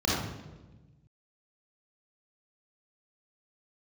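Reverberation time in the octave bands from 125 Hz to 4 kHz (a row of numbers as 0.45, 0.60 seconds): 2.0, 1.6, 1.3, 1.0, 0.90, 0.80 seconds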